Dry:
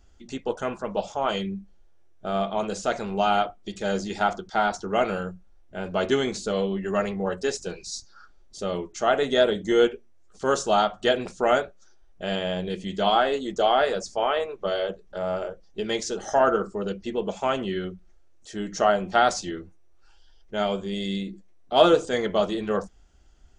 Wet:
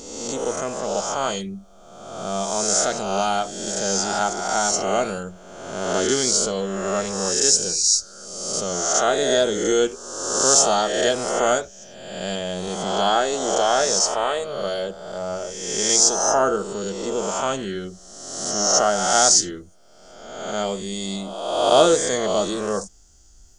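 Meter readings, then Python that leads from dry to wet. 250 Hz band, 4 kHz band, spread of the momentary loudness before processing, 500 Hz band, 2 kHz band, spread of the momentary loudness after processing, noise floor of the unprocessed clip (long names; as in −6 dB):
+1.0 dB, +7.5 dB, 13 LU, +2.0 dB, +1.5 dB, 15 LU, −53 dBFS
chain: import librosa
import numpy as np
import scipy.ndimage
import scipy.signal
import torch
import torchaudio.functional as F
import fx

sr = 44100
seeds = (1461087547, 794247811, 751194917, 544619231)

y = fx.spec_swells(x, sr, rise_s=1.29)
y = fx.high_shelf_res(y, sr, hz=4100.0, db=14.0, q=1.5)
y = F.gain(torch.from_numpy(y), -1.0).numpy()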